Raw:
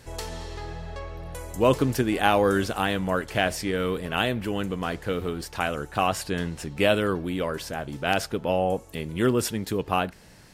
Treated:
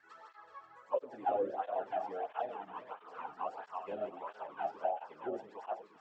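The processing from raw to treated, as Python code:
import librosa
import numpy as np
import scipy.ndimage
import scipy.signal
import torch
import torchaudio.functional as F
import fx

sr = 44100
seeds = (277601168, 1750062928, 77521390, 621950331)

y = fx.reverse_delay_fb(x, sr, ms=333, feedback_pct=67, wet_db=-5)
y = scipy.signal.sosfilt(scipy.signal.butter(16, 8200.0, 'lowpass', fs=sr, output='sos'), y)
y = fx.stretch_vocoder_free(y, sr, factor=0.57)
y = fx.auto_wah(y, sr, base_hz=540.0, top_hz=1500.0, q=5.6, full_db=-19.5, direction='down')
y = fx.flanger_cancel(y, sr, hz=1.5, depth_ms=2.1)
y = y * librosa.db_to_amplitude(1.5)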